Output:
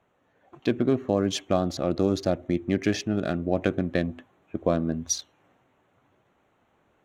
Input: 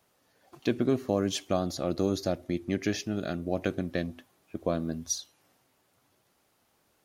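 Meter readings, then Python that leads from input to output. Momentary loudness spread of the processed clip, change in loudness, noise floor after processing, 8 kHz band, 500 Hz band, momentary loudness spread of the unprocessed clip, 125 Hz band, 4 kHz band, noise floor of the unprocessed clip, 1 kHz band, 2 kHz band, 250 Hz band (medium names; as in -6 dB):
5 LU, +4.5 dB, -68 dBFS, +3.5 dB, +4.5 dB, 6 LU, +4.5 dB, +2.5 dB, -71 dBFS, +4.5 dB, +4.0 dB, +4.5 dB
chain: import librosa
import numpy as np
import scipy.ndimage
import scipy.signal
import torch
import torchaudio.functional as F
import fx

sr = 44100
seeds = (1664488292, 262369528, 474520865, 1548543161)

p1 = fx.wiener(x, sr, points=9)
p2 = fx.high_shelf(p1, sr, hz=11000.0, db=-10.0)
p3 = fx.rider(p2, sr, range_db=10, speed_s=0.5)
p4 = p2 + (p3 * 10.0 ** (1.5 / 20.0))
y = p4 * 10.0 ** (-2.0 / 20.0)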